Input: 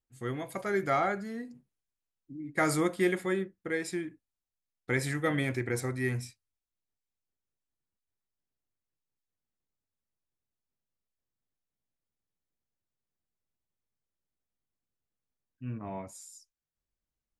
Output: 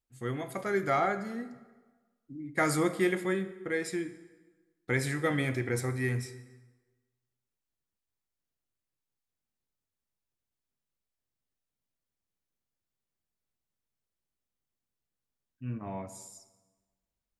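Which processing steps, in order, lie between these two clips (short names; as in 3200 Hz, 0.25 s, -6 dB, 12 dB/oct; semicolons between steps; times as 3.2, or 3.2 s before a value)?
plate-style reverb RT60 1.3 s, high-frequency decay 0.75×, DRR 11 dB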